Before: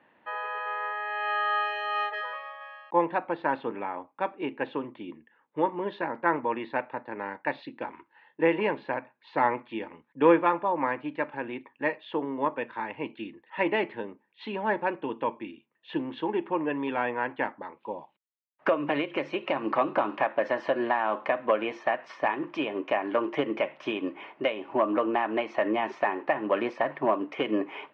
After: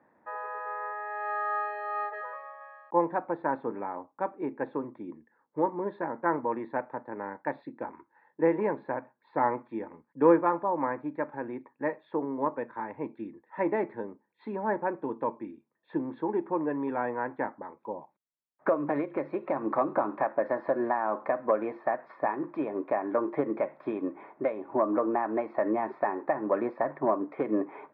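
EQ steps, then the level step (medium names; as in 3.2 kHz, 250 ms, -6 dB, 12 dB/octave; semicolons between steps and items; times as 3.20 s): boxcar filter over 15 samples; distance through air 130 m; 0.0 dB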